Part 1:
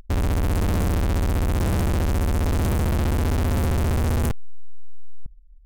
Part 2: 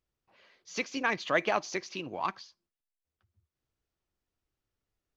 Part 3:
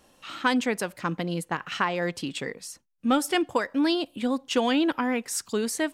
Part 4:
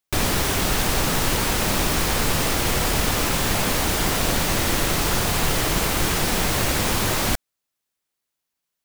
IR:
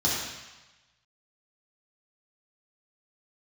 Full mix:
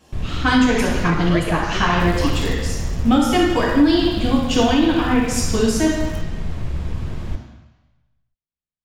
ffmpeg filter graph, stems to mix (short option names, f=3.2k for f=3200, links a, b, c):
-filter_complex "[0:a]adelay=1900,volume=-3dB[a];[1:a]volume=1.5dB,asplit=3[b][c][d];[c]volume=-15dB[e];[2:a]volume=0.5dB,asplit=2[f][g];[g]volume=-4dB[h];[3:a]aemphasis=mode=reproduction:type=riaa,volume=-17dB,asplit=2[i][j];[j]volume=-14dB[k];[d]apad=whole_len=333346[l];[a][l]sidechaingate=range=-8dB:threshold=-53dB:ratio=16:detection=peak[m];[4:a]atrim=start_sample=2205[n];[e][h][k]amix=inputs=3:normalize=0[o];[o][n]afir=irnorm=-1:irlink=0[p];[m][b][f][i][p]amix=inputs=5:normalize=0,alimiter=limit=-6dB:level=0:latency=1:release=337"